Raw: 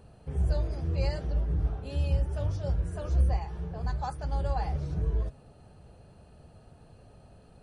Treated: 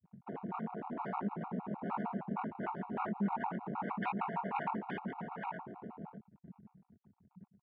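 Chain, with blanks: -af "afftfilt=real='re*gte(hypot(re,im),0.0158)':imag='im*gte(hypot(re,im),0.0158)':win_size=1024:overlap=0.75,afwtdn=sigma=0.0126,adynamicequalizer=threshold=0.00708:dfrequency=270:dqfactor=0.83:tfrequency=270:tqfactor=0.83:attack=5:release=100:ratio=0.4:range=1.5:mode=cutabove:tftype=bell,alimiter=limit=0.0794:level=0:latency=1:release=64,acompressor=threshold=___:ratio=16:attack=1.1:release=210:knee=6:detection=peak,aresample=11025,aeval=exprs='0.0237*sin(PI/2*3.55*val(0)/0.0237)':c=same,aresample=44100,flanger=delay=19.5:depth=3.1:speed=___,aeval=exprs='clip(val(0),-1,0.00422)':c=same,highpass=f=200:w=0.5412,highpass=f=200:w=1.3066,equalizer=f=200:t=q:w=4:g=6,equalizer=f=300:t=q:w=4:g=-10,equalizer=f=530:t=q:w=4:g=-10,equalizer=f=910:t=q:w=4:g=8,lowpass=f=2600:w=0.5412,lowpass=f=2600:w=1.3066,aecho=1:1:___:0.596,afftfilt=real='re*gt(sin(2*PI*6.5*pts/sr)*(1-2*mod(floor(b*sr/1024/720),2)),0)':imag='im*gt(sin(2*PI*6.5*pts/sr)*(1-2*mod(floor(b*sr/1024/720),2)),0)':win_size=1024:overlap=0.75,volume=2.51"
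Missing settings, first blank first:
0.0158, 2.4, 868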